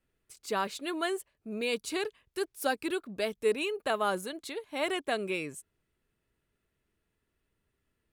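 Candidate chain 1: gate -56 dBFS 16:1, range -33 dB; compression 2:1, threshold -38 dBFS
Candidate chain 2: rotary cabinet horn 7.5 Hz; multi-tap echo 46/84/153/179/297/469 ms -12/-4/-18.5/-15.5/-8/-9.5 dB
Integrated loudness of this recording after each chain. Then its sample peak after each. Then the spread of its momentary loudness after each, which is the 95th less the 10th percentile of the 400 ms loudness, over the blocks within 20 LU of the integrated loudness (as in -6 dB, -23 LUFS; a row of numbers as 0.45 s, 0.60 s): -39.0 LUFS, -33.5 LUFS; -23.0 dBFS, -18.5 dBFS; 6 LU, 6 LU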